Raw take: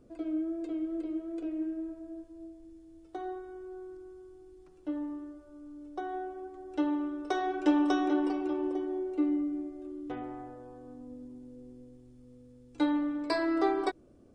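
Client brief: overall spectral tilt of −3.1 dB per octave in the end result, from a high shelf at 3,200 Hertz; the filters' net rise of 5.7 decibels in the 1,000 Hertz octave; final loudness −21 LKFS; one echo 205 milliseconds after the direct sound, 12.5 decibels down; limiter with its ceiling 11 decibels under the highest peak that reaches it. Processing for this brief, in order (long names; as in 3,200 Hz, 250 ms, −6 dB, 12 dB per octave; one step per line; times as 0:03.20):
parametric band 1,000 Hz +7.5 dB
high-shelf EQ 3,200 Hz +6 dB
brickwall limiter −22.5 dBFS
single-tap delay 205 ms −12.5 dB
level +12.5 dB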